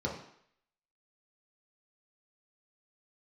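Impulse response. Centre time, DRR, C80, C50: 32 ms, -3.5 dB, 9.5 dB, 5.5 dB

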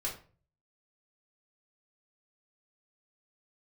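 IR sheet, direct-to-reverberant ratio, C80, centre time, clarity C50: -5.0 dB, 13.5 dB, 22 ms, 8.5 dB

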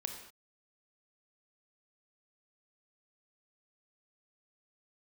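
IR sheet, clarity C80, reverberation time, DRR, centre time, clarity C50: 8.0 dB, no single decay rate, 4.0 dB, 27 ms, 6.0 dB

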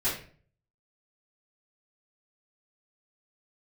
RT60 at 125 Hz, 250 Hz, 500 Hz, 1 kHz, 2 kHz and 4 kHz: 0.75 s, 0.55 s, 0.50 s, 0.40 s, 0.40 s, 0.35 s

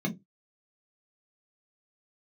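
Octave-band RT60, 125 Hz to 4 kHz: 0.20 s, 0.25 s, 0.20 s, 0.15 s, 0.15 s, 0.10 s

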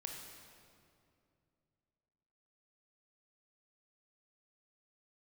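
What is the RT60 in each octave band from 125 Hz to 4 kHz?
3.3 s, 3.0 s, 2.7 s, 2.3 s, 1.9 s, 1.7 s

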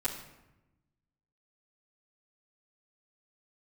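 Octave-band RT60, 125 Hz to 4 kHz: 1.6 s, 1.4 s, 1.0 s, 0.95 s, 0.85 s, 0.65 s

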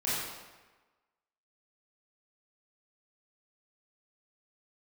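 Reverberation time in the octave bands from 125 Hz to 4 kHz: 1.2 s, 1.2 s, 1.2 s, 1.3 s, 1.2 s, 0.95 s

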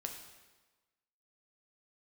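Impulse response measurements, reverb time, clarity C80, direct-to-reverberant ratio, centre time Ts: 1.3 s, 8.0 dB, 2.5 dB, 31 ms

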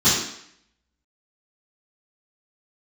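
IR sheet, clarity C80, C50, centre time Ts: 5.0 dB, 1.5 dB, 56 ms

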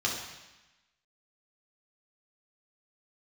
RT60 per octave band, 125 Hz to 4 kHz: 1.1 s, 1.1 s, 0.95 s, 1.1 s, 1.2 s, 1.1 s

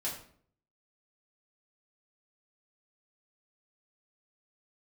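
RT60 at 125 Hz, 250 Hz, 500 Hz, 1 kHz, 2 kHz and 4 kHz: 0.75 s, 0.70 s, 0.60 s, 0.50 s, 0.45 s, 0.40 s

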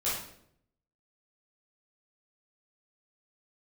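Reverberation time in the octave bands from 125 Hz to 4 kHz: 0.95 s, 0.85 s, 0.80 s, 0.60 s, 0.55 s, 0.55 s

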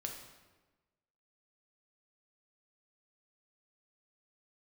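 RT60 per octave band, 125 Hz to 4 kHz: 1.3 s, 1.3 s, 1.3 s, 1.2 s, 1.1 s, 0.90 s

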